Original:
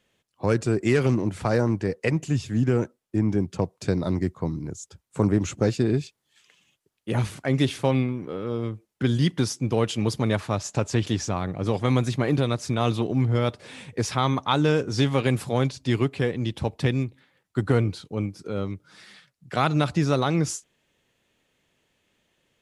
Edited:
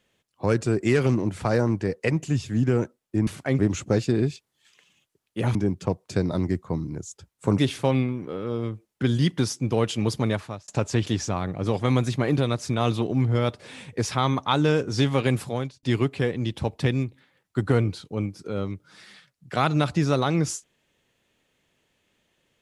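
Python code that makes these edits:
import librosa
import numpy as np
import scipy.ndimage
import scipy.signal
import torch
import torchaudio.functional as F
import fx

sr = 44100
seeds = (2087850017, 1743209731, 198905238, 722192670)

y = fx.edit(x, sr, fx.swap(start_s=3.27, length_s=2.03, other_s=7.26, other_length_s=0.32),
    fx.fade_out_span(start_s=10.25, length_s=0.43),
    fx.fade_out_span(start_s=15.38, length_s=0.45), tone=tone)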